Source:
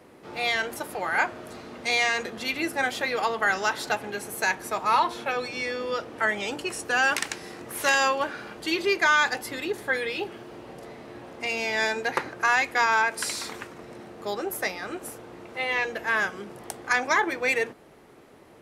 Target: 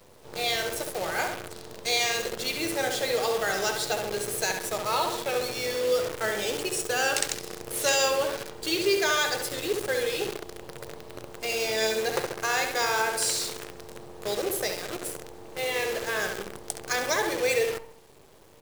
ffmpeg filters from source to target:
ffmpeg -i in.wav -filter_complex "[0:a]equalizer=frequency=125:width_type=o:width=1:gain=6,equalizer=frequency=250:width_type=o:width=1:gain=-8,equalizer=frequency=500:width_type=o:width=1:gain=7,equalizer=frequency=1000:width_type=o:width=1:gain=-7,equalizer=frequency=2000:width_type=o:width=1:gain=-6,equalizer=frequency=4000:width_type=o:width=1:gain=4,equalizer=frequency=8000:width_type=o:width=1:gain=7,asplit=2[link_01][link_02];[link_02]adelay=68,lowpass=frequency=3600:poles=1,volume=-5dB,asplit=2[link_03][link_04];[link_04]adelay=68,lowpass=frequency=3600:poles=1,volume=0.53,asplit=2[link_05][link_06];[link_06]adelay=68,lowpass=frequency=3600:poles=1,volume=0.53,asplit=2[link_07][link_08];[link_08]adelay=68,lowpass=frequency=3600:poles=1,volume=0.53,asplit=2[link_09][link_10];[link_10]adelay=68,lowpass=frequency=3600:poles=1,volume=0.53,asplit=2[link_11][link_12];[link_12]adelay=68,lowpass=frequency=3600:poles=1,volume=0.53,asplit=2[link_13][link_14];[link_14]adelay=68,lowpass=frequency=3600:poles=1,volume=0.53[link_15];[link_01][link_03][link_05][link_07][link_09][link_11][link_13][link_15]amix=inputs=8:normalize=0,acrusher=bits=6:dc=4:mix=0:aa=0.000001,volume=-1.5dB" out.wav

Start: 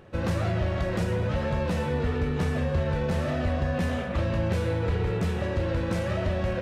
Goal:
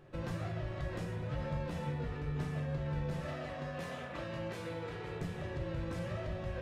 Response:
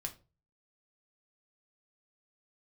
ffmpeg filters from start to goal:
-filter_complex "[0:a]asettb=1/sr,asplit=3[link_01][link_02][link_03];[link_01]atrim=end=3.194[link_04];[link_02]atrim=start=3.19:end=5.21,asetpts=PTS-STARTPTS,afade=type=in:duration=0.004:curve=qsin,afade=type=out:start_time=2.016:duration=0.004:curve=qsin,highpass=frequency=370:poles=1[link_05];[link_03]atrim=start=5.206[link_06];[link_04][link_05]acrossfade=duration=0.004:curve1=hsin:curve2=qsin[link_07];[link_07][link_06]acrossfade=duration=0.004:curve1=qsin:curve2=hsin,acompressor=threshold=-27dB:ratio=6[link_08];[1:a]atrim=start_sample=2205[link_09];[link_08][link_09]afir=irnorm=-1:irlink=0,volume=-6.5dB"

